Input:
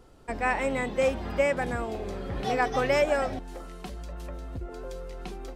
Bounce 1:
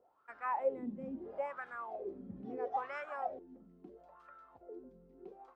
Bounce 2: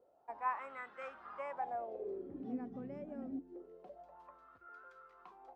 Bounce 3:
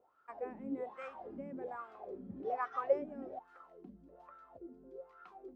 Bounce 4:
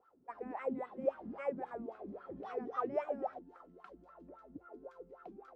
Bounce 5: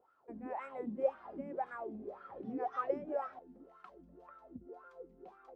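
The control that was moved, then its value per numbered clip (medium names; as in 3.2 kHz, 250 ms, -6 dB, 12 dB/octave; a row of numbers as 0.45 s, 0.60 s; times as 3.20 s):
wah-wah, rate: 0.75 Hz, 0.26 Hz, 1.2 Hz, 3.7 Hz, 1.9 Hz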